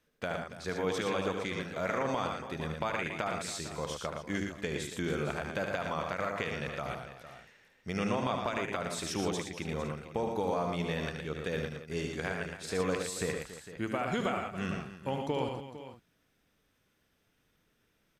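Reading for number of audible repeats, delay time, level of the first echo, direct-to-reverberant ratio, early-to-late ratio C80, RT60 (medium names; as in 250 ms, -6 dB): 5, 75 ms, -7.0 dB, no reverb, no reverb, no reverb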